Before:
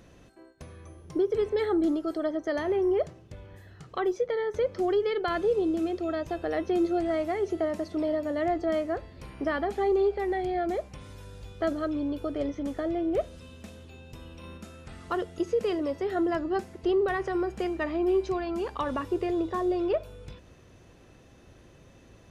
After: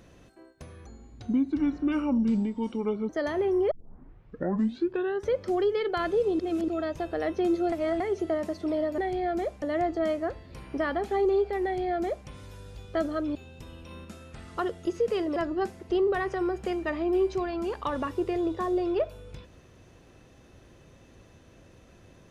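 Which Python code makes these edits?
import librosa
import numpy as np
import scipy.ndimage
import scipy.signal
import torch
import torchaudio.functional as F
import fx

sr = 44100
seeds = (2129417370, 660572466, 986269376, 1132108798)

y = fx.edit(x, sr, fx.speed_span(start_s=0.86, length_s=1.54, speed=0.69),
    fx.tape_start(start_s=3.02, length_s=1.59),
    fx.reverse_span(start_s=5.7, length_s=0.29),
    fx.reverse_span(start_s=7.03, length_s=0.28),
    fx.duplicate(start_s=10.3, length_s=0.64, to_s=8.29),
    fx.cut(start_s=12.02, length_s=1.86),
    fx.cut(start_s=15.89, length_s=0.41), tone=tone)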